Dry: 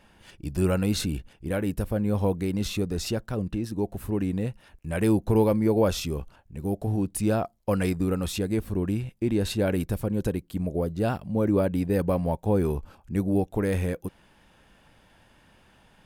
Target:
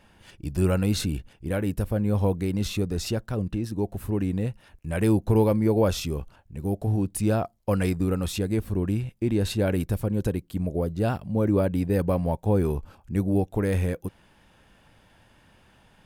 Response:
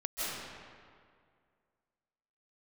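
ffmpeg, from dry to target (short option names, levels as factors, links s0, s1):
-af "equalizer=f=100:t=o:w=0.77:g=3.5"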